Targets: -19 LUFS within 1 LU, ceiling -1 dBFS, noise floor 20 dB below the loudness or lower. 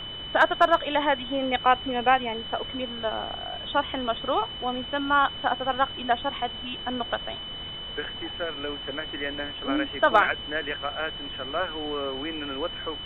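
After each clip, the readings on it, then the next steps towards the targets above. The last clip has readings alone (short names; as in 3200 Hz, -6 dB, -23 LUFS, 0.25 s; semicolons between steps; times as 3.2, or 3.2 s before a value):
steady tone 3000 Hz; tone level -35 dBFS; noise floor -37 dBFS; noise floor target -47 dBFS; loudness -26.5 LUFS; peak -7.5 dBFS; loudness target -19.0 LUFS
-> notch 3000 Hz, Q 30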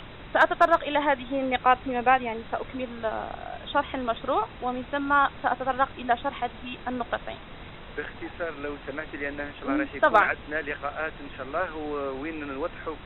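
steady tone none; noise floor -43 dBFS; noise floor target -47 dBFS
-> noise print and reduce 6 dB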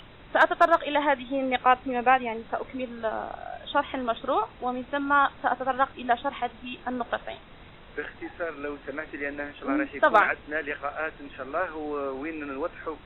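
noise floor -49 dBFS; loudness -27.0 LUFS; peak -7.5 dBFS; loudness target -19.0 LUFS
-> gain +8 dB; limiter -1 dBFS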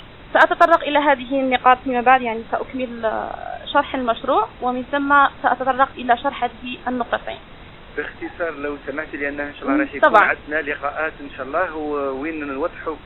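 loudness -19.5 LUFS; peak -1.0 dBFS; noise floor -41 dBFS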